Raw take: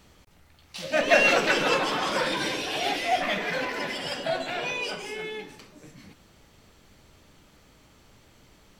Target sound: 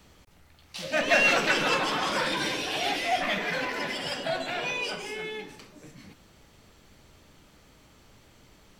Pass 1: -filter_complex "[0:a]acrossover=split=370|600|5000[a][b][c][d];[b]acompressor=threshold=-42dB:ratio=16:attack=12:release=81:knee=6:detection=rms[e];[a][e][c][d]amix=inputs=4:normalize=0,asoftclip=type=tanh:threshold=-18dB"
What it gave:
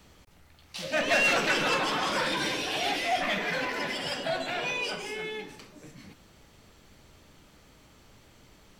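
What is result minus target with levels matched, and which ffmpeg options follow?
soft clip: distortion +10 dB
-filter_complex "[0:a]acrossover=split=370|600|5000[a][b][c][d];[b]acompressor=threshold=-42dB:ratio=16:attack=12:release=81:knee=6:detection=rms[e];[a][e][c][d]amix=inputs=4:normalize=0,asoftclip=type=tanh:threshold=-10dB"

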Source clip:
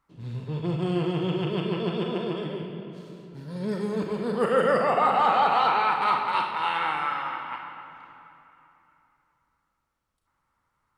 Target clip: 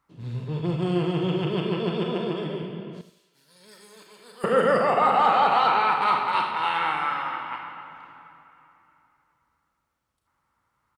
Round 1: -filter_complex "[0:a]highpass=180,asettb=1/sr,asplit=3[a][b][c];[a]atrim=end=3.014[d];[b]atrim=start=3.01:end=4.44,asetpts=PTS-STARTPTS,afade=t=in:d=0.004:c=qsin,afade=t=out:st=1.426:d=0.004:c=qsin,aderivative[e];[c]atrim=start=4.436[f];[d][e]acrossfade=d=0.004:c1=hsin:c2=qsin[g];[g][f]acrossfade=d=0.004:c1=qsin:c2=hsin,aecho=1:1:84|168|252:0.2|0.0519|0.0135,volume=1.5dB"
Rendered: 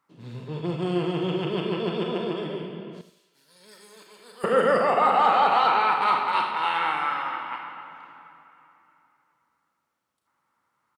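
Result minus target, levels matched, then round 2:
125 Hz band -4.0 dB
-filter_complex "[0:a]highpass=46,asettb=1/sr,asplit=3[a][b][c];[a]atrim=end=3.014[d];[b]atrim=start=3.01:end=4.44,asetpts=PTS-STARTPTS,afade=t=in:d=0.004:c=qsin,afade=t=out:st=1.426:d=0.004:c=qsin,aderivative[e];[c]atrim=start=4.436[f];[d][e]acrossfade=d=0.004:c1=hsin:c2=qsin[g];[g][f]acrossfade=d=0.004:c1=qsin:c2=hsin,aecho=1:1:84|168|252:0.2|0.0519|0.0135,volume=1.5dB"

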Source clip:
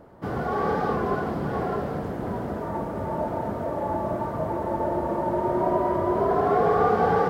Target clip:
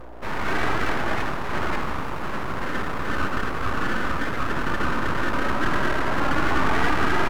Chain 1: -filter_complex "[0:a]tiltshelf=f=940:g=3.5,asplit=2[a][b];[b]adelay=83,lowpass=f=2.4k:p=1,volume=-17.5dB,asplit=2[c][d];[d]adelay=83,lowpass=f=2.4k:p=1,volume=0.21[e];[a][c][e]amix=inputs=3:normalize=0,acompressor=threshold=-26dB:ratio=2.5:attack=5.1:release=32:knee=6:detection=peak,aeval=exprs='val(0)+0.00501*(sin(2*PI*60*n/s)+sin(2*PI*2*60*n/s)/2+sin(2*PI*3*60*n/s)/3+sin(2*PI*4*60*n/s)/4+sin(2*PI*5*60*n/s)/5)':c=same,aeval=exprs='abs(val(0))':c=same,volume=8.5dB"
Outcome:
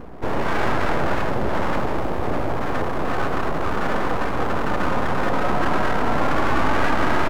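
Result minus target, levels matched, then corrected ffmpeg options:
500 Hz band +3.5 dB
-filter_complex "[0:a]tiltshelf=f=940:g=3.5,asplit=2[a][b];[b]adelay=83,lowpass=f=2.4k:p=1,volume=-17.5dB,asplit=2[c][d];[d]adelay=83,lowpass=f=2.4k:p=1,volume=0.21[e];[a][c][e]amix=inputs=3:normalize=0,acompressor=threshold=-26dB:ratio=2.5:attack=5.1:release=32:knee=6:detection=peak,highpass=f=420:w=0.5412,highpass=f=420:w=1.3066,aeval=exprs='val(0)+0.00501*(sin(2*PI*60*n/s)+sin(2*PI*2*60*n/s)/2+sin(2*PI*3*60*n/s)/3+sin(2*PI*4*60*n/s)/4+sin(2*PI*5*60*n/s)/5)':c=same,aeval=exprs='abs(val(0))':c=same,volume=8.5dB"

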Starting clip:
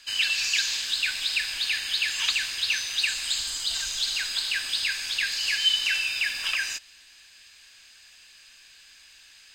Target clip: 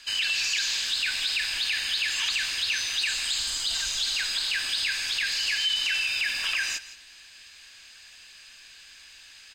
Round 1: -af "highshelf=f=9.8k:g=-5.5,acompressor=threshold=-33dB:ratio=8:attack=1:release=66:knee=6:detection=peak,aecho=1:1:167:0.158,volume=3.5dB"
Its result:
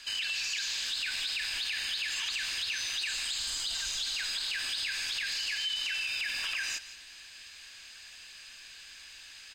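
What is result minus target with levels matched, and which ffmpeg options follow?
compressor: peak gain reduction +7.5 dB
-af "highshelf=f=9.8k:g=-5.5,acompressor=threshold=-24.5dB:ratio=8:attack=1:release=66:knee=6:detection=peak,aecho=1:1:167:0.158,volume=3.5dB"

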